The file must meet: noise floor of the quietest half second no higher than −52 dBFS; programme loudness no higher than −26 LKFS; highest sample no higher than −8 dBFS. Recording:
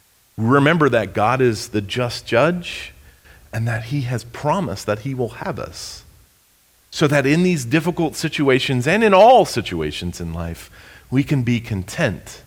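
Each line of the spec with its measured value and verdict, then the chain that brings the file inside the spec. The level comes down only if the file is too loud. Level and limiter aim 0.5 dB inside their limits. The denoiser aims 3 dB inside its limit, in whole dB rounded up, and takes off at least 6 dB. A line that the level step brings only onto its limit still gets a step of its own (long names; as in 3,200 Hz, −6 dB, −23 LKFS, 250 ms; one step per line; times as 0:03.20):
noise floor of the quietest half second −56 dBFS: in spec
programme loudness −18.5 LKFS: out of spec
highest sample −2.5 dBFS: out of spec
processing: level −8 dB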